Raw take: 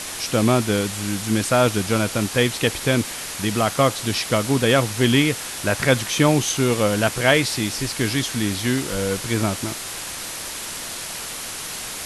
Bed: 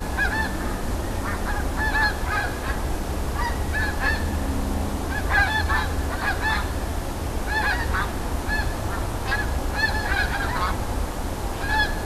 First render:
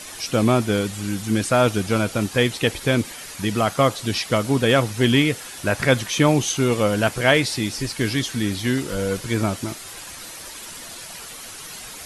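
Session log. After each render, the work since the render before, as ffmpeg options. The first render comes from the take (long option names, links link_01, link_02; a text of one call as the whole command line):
ffmpeg -i in.wav -af "afftdn=noise_reduction=9:noise_floor=-32" out.wav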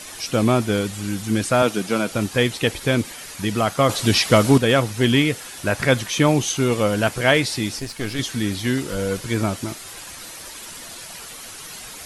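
ffmpeg -i in.wav -filter_complex "[0:a]asettb=1/sr,asplit=3[link_01][link_02][link_03];[link_01]atrim=end=1.624[link_04];[link_02]atrim=start=1.62:end=2.11,asetpts=PTS-STARTPTS,afade=type=in:duration=0.004:curve=qsin,afade=type=out:start_time=0.486:duration=0.004:curve=qsin,highpass=frequency=160:width=0.5412,highpass=frequency=160:width=1.3066[link_05];[link_03]atrim=start=2.106[link_06];[link_04][link_05]acrossfade=duration=0.004:curve1=hsin:curve2=qsin[link_07];[link_07][link_06]acrossfade=duration=0.004:curve1=qsin:curve2=hsin,asettb=1/sr,asplit=3[link_08][link_09][link_10];[link_08]atrim=end=3.894[link_11];[link_09]atrim=start=3.89:end=4.58,asetpts=PTS-STARTPTS,afade=type=in:duration=0.004:curve=qsin,afade=type=out:start_time=0.686:duration=0.004:curve=qsin,acontrast=79[link_12];[link_10]atrim=start=4.576[link_13];[link_11][link_12]acrossfade=duration=0.004:curve1=hsin:curve2=qsin[link_14];[link_14][link_13]acrossfade=duration=0.004:curve1=qsin:curve2=hsin,asettb=1/sr,asplit=3[link_15][link_16][link_17];[link_15]atrim=end=7.794[link_18];[link_16]atrim=start=7.79:end=8.19,asetpts=PTS-STARTPTS,afade=type=in:duration=0.004:curve=qsin,afade=type=out:start_time=0.396:duration=0.004:curve=qsin,aeval=exprs='(tanh(8.91*val(0)+0.75)-tanh(0.75))/8.91':channel_layout=same[link_19];[link_17]atrim=start=8.186[link_20];[link_18][link_19]acrossfade=duration=0.004:curve1=hsin:curve2=qsin[link_21];[link_21][link_20]acrossfade=duration=0.004:curve1=qsin:curve2=hsin" out.wav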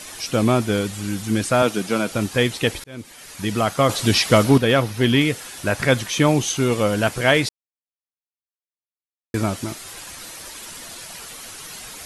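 ffmpeg -i in.wav -filter_complex "[0:a]asettb=1/sr,asplit=3[link_01][link_02][link_03];[link_01]atrim=end=4.444[link_04];[link_02]atrim=start=4.44:end=5.21,asetpts=PTS-STARTPTS,afade=type=in:duration=0.004:curve=qsin,afade=type=out:start_time=0.766:duration=0.004:curve=qsin,equalizer=frequency=7700:width=1.9:gain=-7[link_05];[link_03]atrim=start=5.206[link_06];[link_04][link_05]acrossfade=duration=0.004:curve1=hsin:curve2=qsin[link_07];[link_07][link_06]acrossfade=duration=0.004:curve1=qsin:curve2=hsin,asplit=4[link_08][link_09][link_10][link_11];[link_08]atrim=end=2.84,asetpts=PTS-STARTPTS,afade=type=out:start_time=2.836:duration=0.004:curve=hsin[link_12];[link_09]atrim=start=2.84:end=7.49,asetpts=PTS-STARTPTS,afade=type=in:duration=0.69,afade=type=out:start_time=4.646:duration=0.004:curve=hsin[link_13];[link_10]atrim=start=7.49:end=9.34,asetpts=PTS-STARTPTS,volume=0[link_14];[link_11]atrim=start=9.34,asetpts=PTS-STARTPTS,afade=type=in:duration=0.004:curve=hsin[link_15];[link_12][link_13][link_14][link_15]concat=n=4:v=0:a=1" out.wav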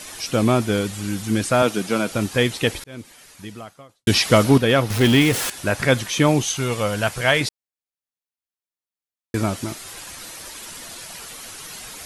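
ffmpeg -i in.wav -filter_complex "[0:a]asettb=1/sr,asplit=3[link_01][link_02][link_03];[link_01]atrim=end=4.904[link_04];[link_02]atrim=start=4.9:end=5.5,asetpts=PTS-STARTPTS,afade=type=in:duration=0.004:curve=qsin,afade=type=out:start_time=0.596:duration=0.004:curve=qsin,aeval=exprs='val(0)+0.5*0.0944*sgn(val(0))':channel_layout=same[link_05];[link_03]atrim=start=5.496[link_06];[link_04][link_05]acrossfade=duration=0.004:curve1=hsin:curve2=qsin[link_07];[link_07][link_06]acrossfade=duration=0.004:curve1=qsin:curve2=hsin,asettb=1/sr,asplit=3[link_08][link_09][link_10];[link_08]atrim=end=6.434[link_11];[link_09]atrim=start=6.43:end=7.41,asetpts=PTS-STARTPTS,afade=type=in:duration=0.004:curve=qsin,afade=type=out:start_time=0.976:duration=0.004:curve=qsin,equalizer=frequency=300:width_type=o:width=1.3:gain=-8[link_12];[link_10]atrim=start=7.406[link_13];[link_11][link_12]acrossfade=duration=0.004:curve1=hsin:curve2=qsin[link_14];[link_14][link_13]acrossfade=duration=0.004:curve1=qsin:curve2=hsin,asplit=2[link_15][link_16];[link_15]atrim=end=4.07,asetpts=PTS-STARTPTS,afade=type=out:start_time=2.9:duration=1.17:curve=qua[link_17];[link_16]atrim=start=4.07,asetpts=PTS-STARTPTS,afade=type=in:duration=0.004:curve=hsin[link_18];[link_17][link_18]concat=n=2:v=0:a=1" out.wav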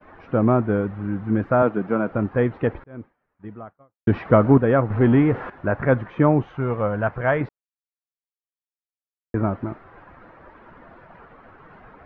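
ffmpeg -i in.wav -af "agate=range=-33dB:threshold=-34dB:ratio=3:detection=peak,lowpass=frequency=1500:width=0.5412,lowpass=frequency=1500:width=1.3066" out.wav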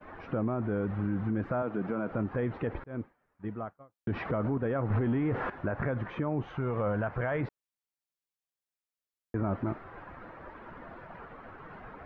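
ffmpeg -i in.wav -af "acompressor=threshold=-19dB:ratio=6,alimiter=limit=-23dB:level=0:latency=1:release=47" out.wav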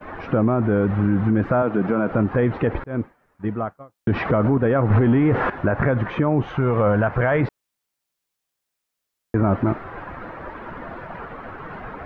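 ffmpeg -i in.wav -af "volume=12dB" out.wav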